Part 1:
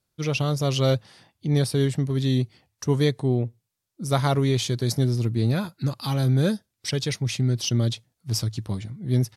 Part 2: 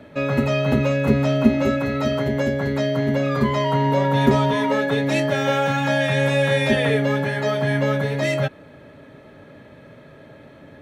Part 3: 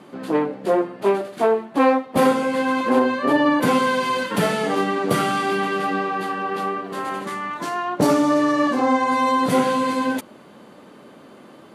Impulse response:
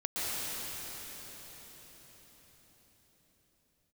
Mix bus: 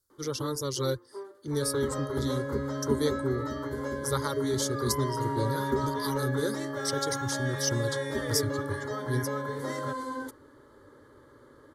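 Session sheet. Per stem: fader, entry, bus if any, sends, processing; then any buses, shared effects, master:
-3.5 dB, 0.00 s, no send, reverb removal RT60 0.79 s; high shelf 4200 Hz +8.5 dB
-8.5 dB, 1.45 s, no send, dry
-11.0 dB, 0.10 s, no send, auto duck -11 dB, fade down 1.10 s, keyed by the first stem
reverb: off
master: low shelf 64 Hz +5.5 dB; fixed phaser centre 690 Hz, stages 6

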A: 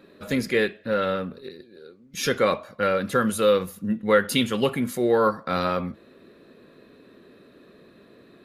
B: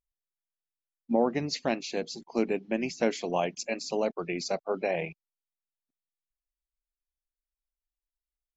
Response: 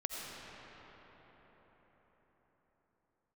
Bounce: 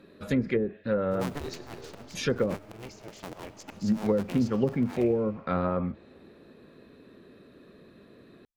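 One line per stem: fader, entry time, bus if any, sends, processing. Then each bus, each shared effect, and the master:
-3.5 dB, 0.00 s, muted 2.56–3.72, no send, treble ducked by the level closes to 380 Hz, closed at -17 dBFS
-0.5 dB, 0.00 s, send -17 dB, cycle switcher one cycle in 2, inverted; auto swell 0.166 s; noise-modulated level, depth 60%; auto duck -9 dB, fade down 1.20 s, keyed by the first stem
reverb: on, RT60 5.3 s, pre-delay 45 ms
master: low shelf 200 Hz +7 dB

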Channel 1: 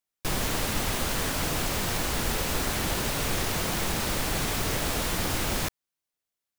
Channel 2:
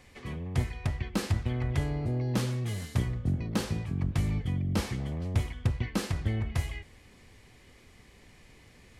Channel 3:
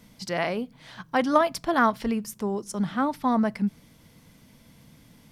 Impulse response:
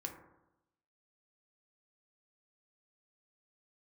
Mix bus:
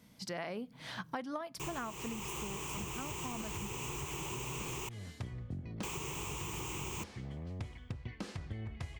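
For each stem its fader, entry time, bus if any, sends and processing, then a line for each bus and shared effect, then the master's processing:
-5.5 dB, 1.35 s, muted 4.89–5.83, no send, ripple EQ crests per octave 0.71, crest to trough 16 dB
-8.0 dB, 2.25 s, no send, LPF 7700 Hz 12 dB/oct
2.01 s -8 dB -> 2.65 s -20.5 dB, 0.00 s, no send, AGC gain up to 12.5 dB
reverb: off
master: HPF 51 Hz; compressor 12:1, threshold -37 dBFS, peak gain reduction 20 dB

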